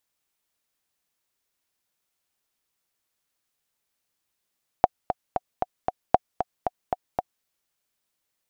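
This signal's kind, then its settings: metronome 230 bpm, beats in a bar 5, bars 2, 734 Hz, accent 9 dB -1.5 dBFS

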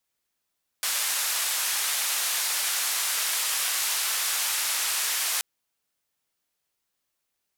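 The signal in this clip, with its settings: noise band 960–13000 Hz, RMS -27 dBFS 4.58 s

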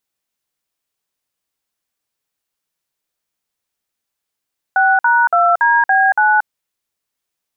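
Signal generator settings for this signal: DTMF "6#2DB9", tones 0.23 s, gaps 53 ms, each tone -12 dBFS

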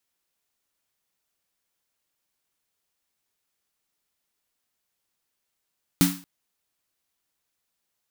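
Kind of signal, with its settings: snare drum length 0.23 s, tones 180 Hz, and 280 Hz, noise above 810 Hz, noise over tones -5 dB, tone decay 0.35 s, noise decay 0.39 s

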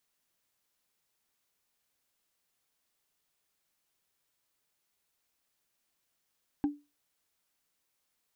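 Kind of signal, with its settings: wood hit, lowest mode 291 Hz, decay 0.26 s, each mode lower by 12 dB, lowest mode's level -22 dB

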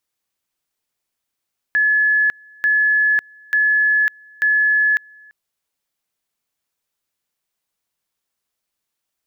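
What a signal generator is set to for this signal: two-level tone 1710 Hz -12.5 dBFS, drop 29.5 dB, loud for 0.55 s, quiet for 0.34 s, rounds 4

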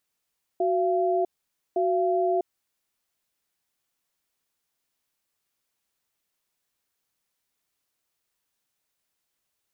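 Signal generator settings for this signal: cadence 370 Hz, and 684 Hz, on 0.65 s, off 0.51 s, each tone -23.5 dBFS 2.03 s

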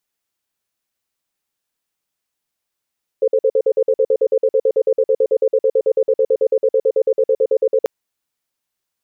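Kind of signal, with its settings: cadence 445 Hz, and 523 Hz, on 0.06 s, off 0.05 s, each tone -14 dBFS 4.64 s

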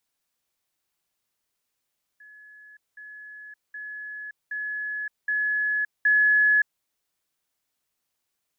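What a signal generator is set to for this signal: level ladder 1700 Hz -46 dBFS, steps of 6 dB, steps 6, 0.57 s 0.20 s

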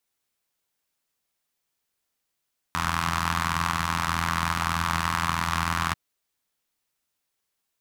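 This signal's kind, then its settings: four-cylinder engine model, steady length 3.19 s, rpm 2500, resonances 89/150/1100 Hz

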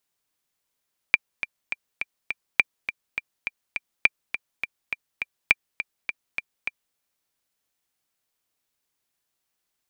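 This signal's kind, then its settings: metronome 206 bpm, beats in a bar 5, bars 4, 2370 Hz, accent 11.5 dB -2 dBFS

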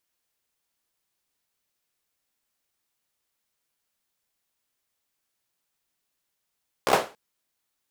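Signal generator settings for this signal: hand clap length 0.28 s, bursts 5, apart 15 ms, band 580 Hz, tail 0.32 s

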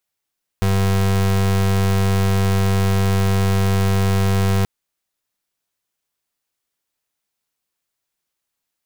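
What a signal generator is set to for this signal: pulse 96.9 Hz, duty 33% -16.5 dBFS 4.03 s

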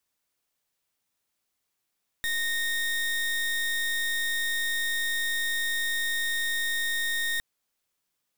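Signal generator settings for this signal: pulse 1850 Hz, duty 30% -28 dBFS 5.16 s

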